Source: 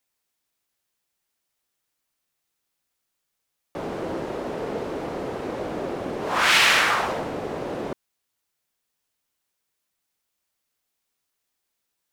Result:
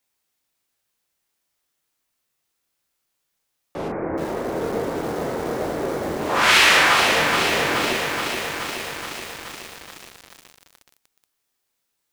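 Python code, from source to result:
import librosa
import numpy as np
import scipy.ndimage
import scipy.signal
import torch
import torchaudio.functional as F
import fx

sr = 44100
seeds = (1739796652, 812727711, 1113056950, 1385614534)

y = fx.steep_lowpass(x, sr, hz=2300.0, slope=72, at=(3.88, 6.19))
y = fx.room_early_taps(y, sr, ms=(24, 37), db=(-7.5, -6.0))
y = fx.echo_crushed(y, sr, ms=425, feedback_pct=80, bits=6, wet_db=-5.0)
y = y * librosa.db_to_amplitude(1.5)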